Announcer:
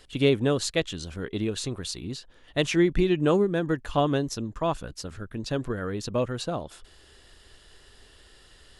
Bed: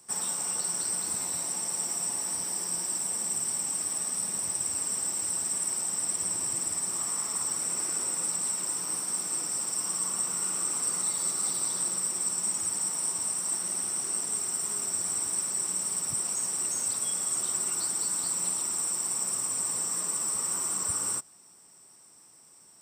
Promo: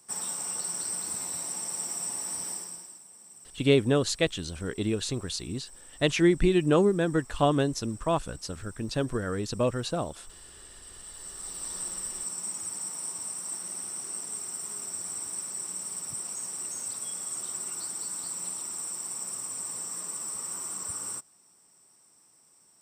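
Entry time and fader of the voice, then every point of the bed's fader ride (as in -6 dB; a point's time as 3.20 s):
3.45 s, 0.0 dB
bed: 2.51 s -2.5 dB
3.04 s -20.5 dB
10.82 s -20.5 dB
11.75 s -5.5 dB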